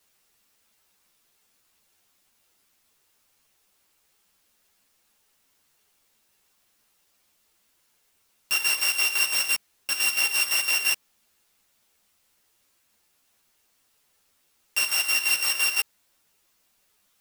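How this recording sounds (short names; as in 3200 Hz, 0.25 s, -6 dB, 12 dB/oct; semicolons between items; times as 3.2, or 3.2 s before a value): a buzz of ramps at a fixed pitch in blocks of 16 samples; chopped level 5.9 Hz, depth 65%, duty 55%; a quantiser's noise floor 12-bit, dither triangular; a shimmering, thickened sound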